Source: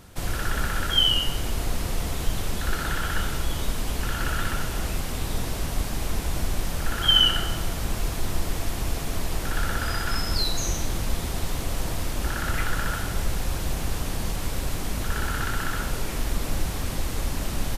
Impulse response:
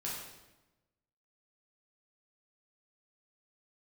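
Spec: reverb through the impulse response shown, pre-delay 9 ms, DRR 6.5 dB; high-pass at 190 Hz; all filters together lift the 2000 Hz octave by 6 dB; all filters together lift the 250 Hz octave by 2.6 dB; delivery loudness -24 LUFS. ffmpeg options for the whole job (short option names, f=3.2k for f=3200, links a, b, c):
-filter_complex "[0:a]highpass=190,equalizer=f=250:t=o:g=5.5,equalizer=f=2k:t=o:g=8,asplit=2[a][b];[1:a]atrim=start_sample=2205,adelay=9[c];[b][c]afir=irnorm=-1:irlink=0,volume=-8dB[d];[a][d]amix=inputs=2:normalize=0,volume=0.5dB"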